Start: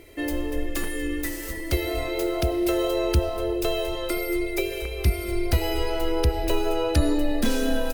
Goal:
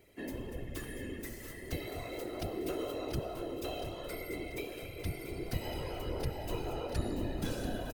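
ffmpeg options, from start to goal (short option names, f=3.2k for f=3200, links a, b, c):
-filter_complex "[0:a]afftfilt=real='hypot(re,im)*cos(2*PI*random(0))':imag='hypot(re,im)*sin(2*PI*random(1))':win_size=512:overlap=0.75,asplit=2[a][b];[b]aecho=0:1:687|1374|2061|2748:0.316|0.133|0.0558|0.0234[c];[a][c]amix=inputs=2:normalize=0,volume=-8dB"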